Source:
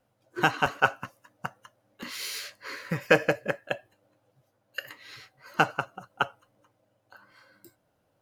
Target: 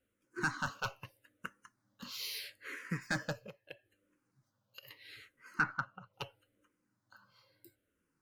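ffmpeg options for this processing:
-filter_complex "[0:a]equalizer=f=710:t=o:w=0.65:g=-13.5,asettb=1/sr,asplit=3[a][b][c];[a]atrim=end=3.364[d];[b]atrim=start=3.36:end=4.83,asetpts=PTS-STARTPTS,afade=t=in:d=0.004:c=qsin,afade=t=out:st=1.466:d=0.004:c=qsin,acompressor=threshold=-39dB:ratio=12[e];[c]atrim=start=4.826[f];[d][e]acrossfade=d=0.004:c1=hsin:c2=qsin[g];[g][f]acrossfade=d=0.004:c1=qsin:c2=hsin,volume=19dB,asoftclip=hard,volume=-19dB,asplit=3[h][i][j];[h]afade=t=out:st=5.58:d=0.02[k];[i]lowpass=f=2.1k:t=q:w=1.9,afade=t=in:st=5.58:d=0.02,afade=t=out:st=6.12:d=0.02[l];[j]afade=t=in:st=6.12:d=0.02[m];[k][l][m]amix=inputs=3:normalize=0,asoftclip=type=tanh:threshold=-16.5dB,asplit=2[n][o];[o]afreqshift=-0.77[p];[n][p]amix=inputs=2:normalize=1,volume=-3.5dB"

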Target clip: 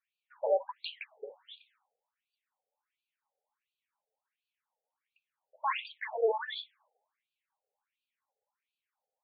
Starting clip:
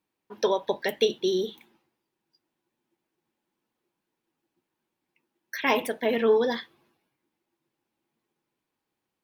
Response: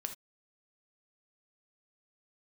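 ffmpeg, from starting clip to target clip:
-af "lowshelf=f=190:g=9.5,bandreject=f=50:t=h:w=6,bandreject=f=100:t=h:w=6,bandreject=f=150:t=h:w=6,bandreject=f=200:t=h:w=6,bandreject=f=250:t=h:w=6,bandreject=f=300:t=h:w=6,bandreject=f=350:t=h:w=6,bandreject=f=400:t=h:w=6,bandreject=f=450:t=h:w=6,afftfilt=real='re*between(b*sr/1024,570*pow(3400/570,0.5+0.5*sin(2*PI*1.4*pts/sr))/1.41,570*pow(3400/570,0.5+0.5*sin(2*PI*1.4*pts/sr))*1.41)':imag='im*between(b*sr/1024,570*pow(3400/570,0.5+0.5*sin(2*PI*1.4*pts/sr))/1.41,570*pow(3400/570,0.5+0.5*sin(2*PI*1.4*pts/sr))*1.41)':win_size=1024:overlap=0.75"

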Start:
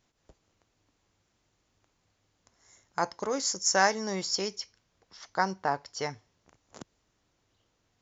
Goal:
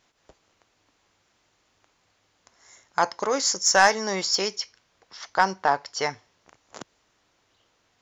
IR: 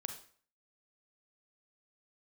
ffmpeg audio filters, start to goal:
-filter_complex "[0:a]asplit=2[a][b];[b]highpass=f=720:p=1,volume=11dB,asoftclip=type=tanh:threshold=-7.5dB[c];[a][c]amix=inputs=2:normalize=0,lowpass=f=4.9k:p=1,volume=-6dB,volume=3.5dB"

